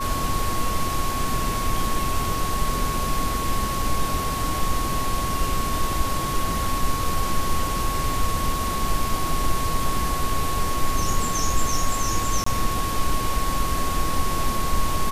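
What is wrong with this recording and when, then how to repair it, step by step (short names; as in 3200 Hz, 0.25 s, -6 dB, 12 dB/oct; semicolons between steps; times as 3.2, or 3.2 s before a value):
tone 1100 Hz -27 dBFS
12.44–12.46 gap 24 ms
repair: notch 1100 Hz, Q 30; interpolate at 12.44, 24 ms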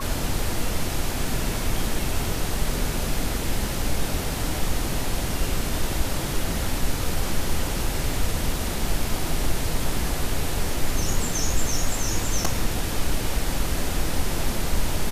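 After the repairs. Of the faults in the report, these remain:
none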